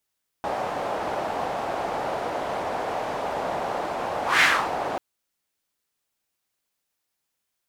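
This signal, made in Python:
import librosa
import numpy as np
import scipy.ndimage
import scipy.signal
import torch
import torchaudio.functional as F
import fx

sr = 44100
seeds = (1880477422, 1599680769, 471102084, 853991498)

y = fx.whoosh(sr, seeds[0], length_s=4.54, peak_s=3.97, rise_s=0.18, fall_s=0.32, ends_hz=720.0, peak_hz=2000.0, q=2.2, swell_db=11)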